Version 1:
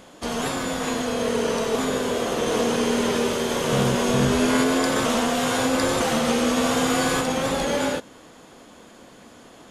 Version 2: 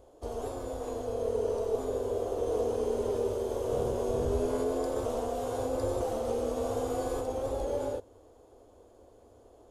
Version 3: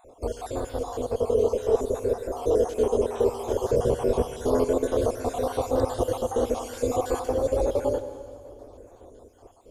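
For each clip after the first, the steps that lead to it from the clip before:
drawn EQ curve 100 Hz 0 dB, 160 Hz −28 dB, 410 Hz −4 dB, 730 Hz −9 dB, 1,900 Hz −28 dB, 13,000 Hz −15 dB
time-frequency cells dropped at random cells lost 52%; convolution reverb RT60 2.3 s, pre-delay 81 ms, DRR 11 dB; level +9 dB

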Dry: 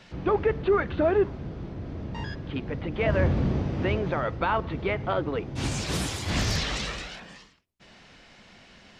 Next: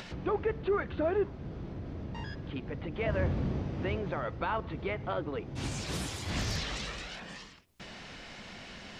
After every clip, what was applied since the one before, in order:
upward compression, threshold −27 dBFS
level −7 dB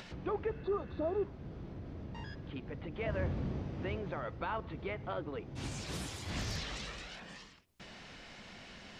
healed spectral selection 0:00.52–0:01.20, 1,300–3,400 Hz after
level −5 dB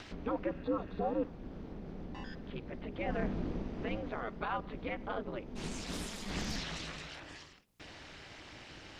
ring modulation 110 Hz
level +3.5 dB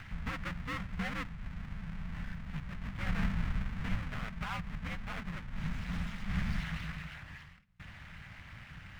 each half-wave held at its own peak
drawn EQ curve 180 Hz 0 dB, 350 Hz −24 dB, 1,400 Hz −3 dB, 2,000 Hz 0 dB, 4,200 Hz −12 dB, 12,000 Hz −23 dB
level +1 dB

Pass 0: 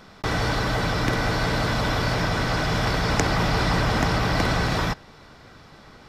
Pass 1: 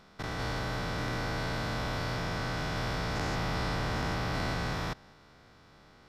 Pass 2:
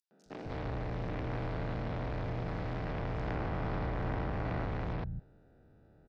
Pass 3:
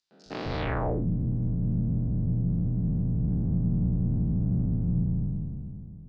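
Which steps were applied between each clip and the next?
spectrum averaged block by block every 200 ms; level −8.5 dB
adaptive Wiener filter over 41 samples; treble cut that deepens with the level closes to 2,500 Hz, closed at −30 dBFS; three-band delay without the direct sound highs, mids, lows 110/260 ms, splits 190/5,400 Hz
peak hold with a decay on every bin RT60 2.71 s; in parallel at +1 dB: brickwall limiter −28.5 dBFS, peak gain reduction 7.5 dB; on the sum: low-pass filter sweep 4,600 Hz → 190 Hz, 0:00.58–0:01.08

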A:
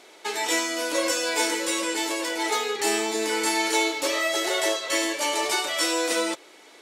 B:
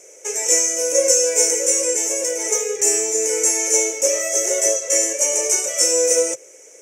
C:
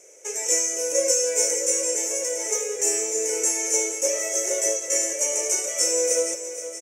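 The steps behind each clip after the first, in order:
drawn EQ curve 140 Hz 0 dB, 200 Hz −19 dB, 330 Hz −9 dB, 520 Hz +8 dB, 750 Hz −13 dB, 1,100 Hz −16 dB, 2,400 Hz −6 dB, 4,200 Hz −27 dB, 6,000 Hz +14 dB, 11,000 Hz 0 dB; level +4.5 dB
repeating echo 470 ms, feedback 57%, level −12 dB; level −5.5 dB

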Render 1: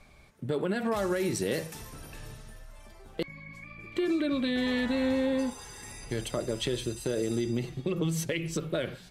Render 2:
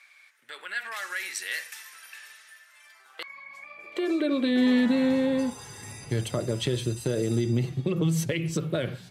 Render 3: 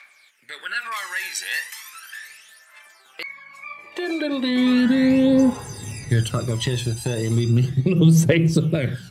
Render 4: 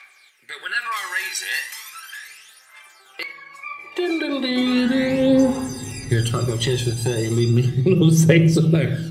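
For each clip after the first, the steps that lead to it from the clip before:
high-pass filter sweep 1,800 Hz → 110 Hz, 0:02.86–0:05.41; level +1.5 dB
phase shifter 0.36 Hz, delay 1.3 ms, feedback 63%; level +4 dB
convolution reverb RT60 0.85 s, pre-delay 3 ms, DRR 7.5 dB; level +1 dB

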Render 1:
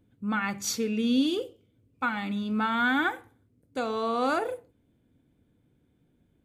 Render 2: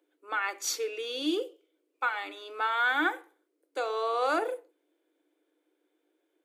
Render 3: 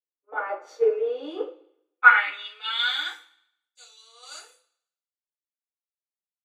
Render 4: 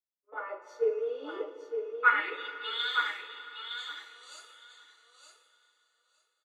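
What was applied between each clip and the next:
Chebyshev high-pass filter 300 Hz, order 8
band-pass filter sweep 610 Hz → 6,600 Hz, 0:00.96–0:03.32; coupled-rooms reverb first 0.31 s, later 1.7 s, from −20 dB, DRR −6.5 dB; multiband upward and downward expander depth 100%; level +4 dB
notch comb filter 770 Hz; on a send: repeating echo 913 ms, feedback 15%, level −6.5 dB; on the sum: dense smooth reverb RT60 4.5 s, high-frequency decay 0.9×, DRR 11 dB; level −7 dB

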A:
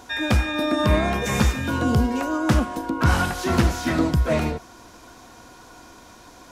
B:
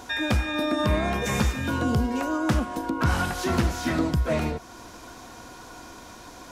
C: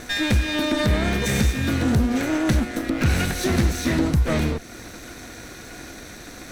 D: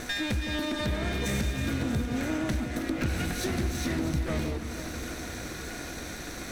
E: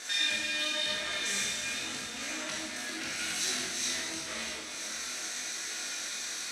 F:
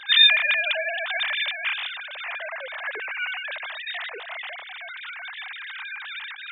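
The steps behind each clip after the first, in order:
downward compressor 1.5 to 1, threshold −34 dBFS, peak gain reduction 7.5 dB; level +2.5 dB
lower of the sound and its delayed copy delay 0.5 ms; dynamic equaliser 1,100 Hz, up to −5 dB, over −44 dBFS, Q 0.98; in parallel at +1 dB: brickwall limiter −20 dBFS, peak gain reduction 9.5 dB
downward compressor 2.5 to 1, threshold −32 dBFS, peak gain reduction 11.5 dB; delay that swaps between a low-pass and a high-pass 161 ms, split 1,200 Hz, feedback 82%, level −8.5 dB
meter weighting curve ITU-R 468; four-comb reverb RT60 1 s, combs from 28 ms, DRR −4 dB; chorus effect 0.89 Hz, delay 18 ms, depth 5.5 ms; level −6.5 dB
three sine waves on the formant tracks; level +8 dB

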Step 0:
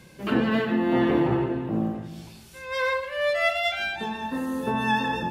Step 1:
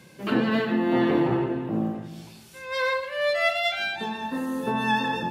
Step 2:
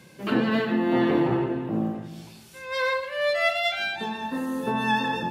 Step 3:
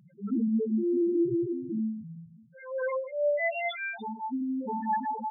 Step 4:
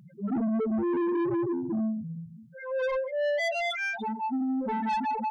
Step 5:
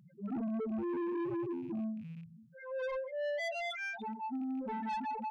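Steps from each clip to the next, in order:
dynamic equaliser 4,200 Hz, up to +6 dB, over −54 dBFS, Q 5.3; high-pass filter 110 Hz 12 dB per octave
no processing that can be heard
spectral peaks only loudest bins 2
soft clipping −31 dBFS, distortion −10 dB; level +6 dB
loose part that buzzes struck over −37 dBFS, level −46 dBFS; level −8.5 dB

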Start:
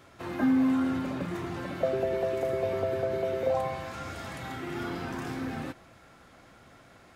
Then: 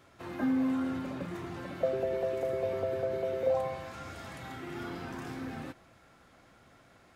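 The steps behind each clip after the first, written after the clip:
dynamic equaliser 520 Hz, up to +5 dB, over −42 dBFS, Q 4.7
level −5 dB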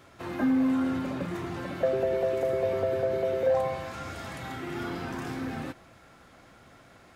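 soft clipping −21.5 dBFS, distortion −22 dB
level +5.5 dB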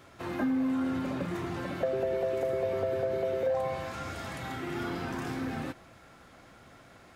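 downward compressor 2.5 to 1, threshold −28 dBFS, peak gain reduction 5.5 dB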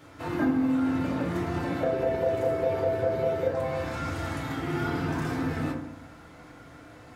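feedback delay network reverb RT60 0.76 s, low-frequency decay 1.55×, high-frequency decay 0.35×, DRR −2.5 dB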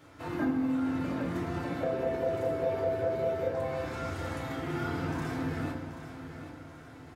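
repeating echo 782 ms, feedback 43%, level −11 dB
level −4.5 dB

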